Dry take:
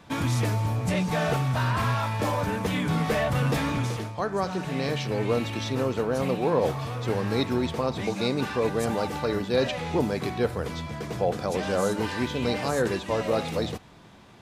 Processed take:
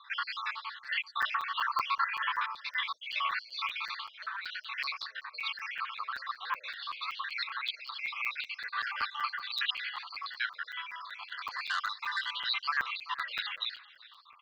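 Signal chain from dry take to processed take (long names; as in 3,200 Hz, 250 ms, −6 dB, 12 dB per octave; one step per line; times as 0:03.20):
time-frequency cells dropped at random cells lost 65%
Chebyshev band-pass filter 1,100–4,500 Hz, order 4
slap from a distant wall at 66 metres, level −18 dB
regular buffer underruns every 0.19 s, samples 256, zero, from 0:00.84
0:11.10–0:12.36: saturating transformer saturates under 2,100 Hz
level +6.5 dB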